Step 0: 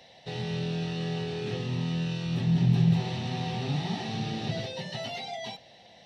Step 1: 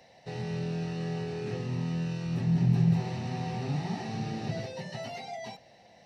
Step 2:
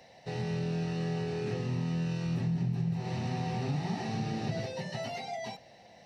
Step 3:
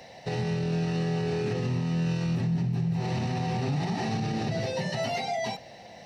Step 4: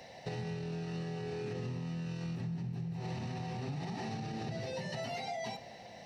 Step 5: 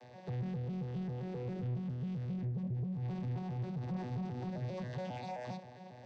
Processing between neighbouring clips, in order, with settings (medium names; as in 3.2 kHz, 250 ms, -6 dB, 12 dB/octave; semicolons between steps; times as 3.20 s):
peaking EQ 3.4 kHz -13.5 dB 0.46 oct; trim -1.5 dB
compression 10:1, threshold -29 dBFS, peak gain reduction 10.5 dB; trim +1.5 dB
peak limiter -29.5 dBFS, peak gain reduction 7.5 dB; trim +8.5 dB
compression, threshold -32 dBFS, peak gain reduction 8 dB; on a send at -13.5 dB: reverberation RT60 2.0 s, pre-delay 22 ms; on the sum: trim -4 dB
vocoder on a broken chord bare fifth, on B2, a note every 134 ms; saturation -36 dBFS, distortion -14 dB; trim +3.5 dB